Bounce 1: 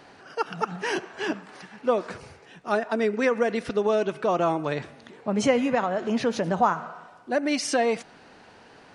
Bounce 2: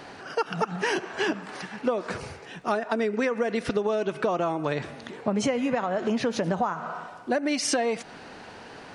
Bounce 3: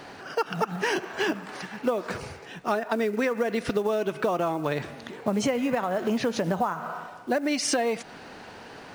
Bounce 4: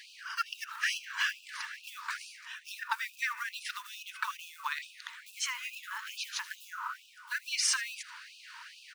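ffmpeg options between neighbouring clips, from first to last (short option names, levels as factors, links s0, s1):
-af "acompressor=threshold=0.0355:ratio=12,volume=2.24"
-af "acrusher=bits=7:mode=log:mix=0:aa=0.000001"
-af "aecho=1:1:79:0.119,afftfilt=real='re*gte(b*sr/1024,860*pow(2500/860,0.5+0.5*sin(2*PI*2.3*pts/sr)))':imag='im*gte(b*sr/1024,860*pow(2500/860,0.5+0.5*sin(2*PI*2.3*pts/sr)))':win_size=1024:overlap=0.75"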